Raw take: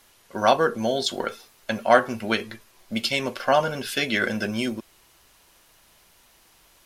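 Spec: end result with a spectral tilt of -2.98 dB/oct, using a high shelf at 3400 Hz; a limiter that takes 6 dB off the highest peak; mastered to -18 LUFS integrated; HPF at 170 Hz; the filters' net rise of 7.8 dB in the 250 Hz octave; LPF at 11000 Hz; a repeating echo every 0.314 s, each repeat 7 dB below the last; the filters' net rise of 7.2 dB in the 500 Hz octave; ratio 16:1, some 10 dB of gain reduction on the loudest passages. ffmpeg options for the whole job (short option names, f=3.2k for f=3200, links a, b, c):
-af "highpass=170,lowpass=11k,equalizer=f=250:t=o:g=8.5,equalizer=f=500:t=o:g=7,highshelf=f=3.4k:g=5,acompressor=threshold=-16dB:ratio=16,alimiter=limit=-12dB:level=0:latency=1,aecho=1:1:314|628|942|1256|1570:0.447|0.201|0.0905|0.0407|0.0183,volume=6dB"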